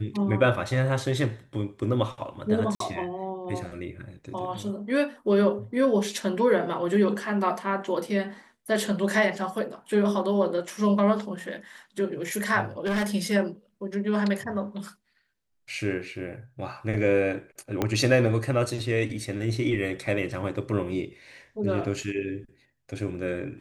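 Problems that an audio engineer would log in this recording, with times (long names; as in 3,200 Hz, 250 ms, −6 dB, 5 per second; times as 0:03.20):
0:02.75–0:02.80: drop-out 53 ms
0:12.85–0:13.07: clipping −22.5 dBFS
0:17.82: click −11 dBFS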